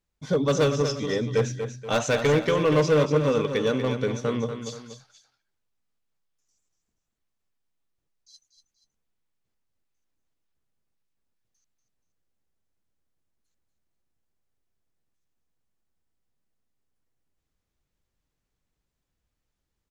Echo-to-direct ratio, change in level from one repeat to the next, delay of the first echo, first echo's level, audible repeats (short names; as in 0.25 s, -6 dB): -8.0 dB, -7.5 dB, 0.239 s, -8.5 dB, 2